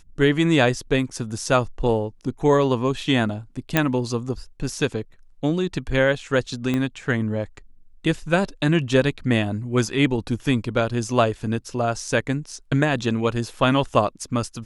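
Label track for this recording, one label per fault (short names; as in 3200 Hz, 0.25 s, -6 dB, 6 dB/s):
3.770000	3.770000	pop -3 dBFS
6.740000	6.740000	pop -12 dBFS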